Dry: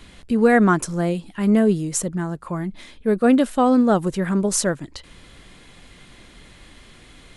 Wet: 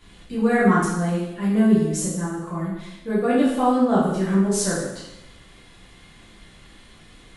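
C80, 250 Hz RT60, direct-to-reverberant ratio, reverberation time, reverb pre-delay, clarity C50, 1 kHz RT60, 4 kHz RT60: 4.0 dB, 0.95 s, -9.5 dB, 0.95 s, 4 ms, 0.5 dB, 0.95 s, 0.85 s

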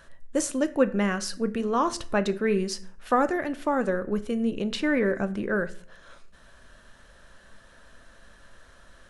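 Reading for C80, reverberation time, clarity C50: 20.5 dB, 0.50 s, 17.0 dB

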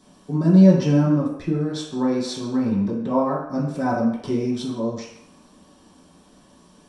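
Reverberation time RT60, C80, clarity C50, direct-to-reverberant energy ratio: 0.70 s, 7.0 dB, 4.0 dB, -8.5 dB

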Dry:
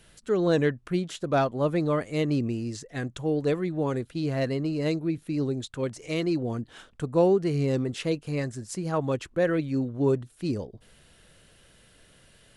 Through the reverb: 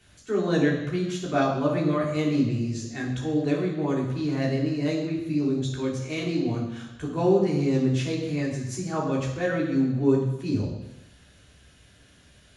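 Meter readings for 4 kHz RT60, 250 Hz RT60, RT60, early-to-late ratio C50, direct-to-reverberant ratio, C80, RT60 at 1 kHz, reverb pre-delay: 1.0 s, 0.95 s, 1.0 s, 4.5 dB, -3.0 dB, 6.5 dB, 1.1 s, 3 ms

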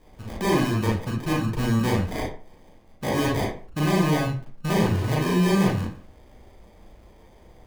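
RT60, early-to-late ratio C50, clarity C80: 0.40 s, 3.5 dB, 10.5 dB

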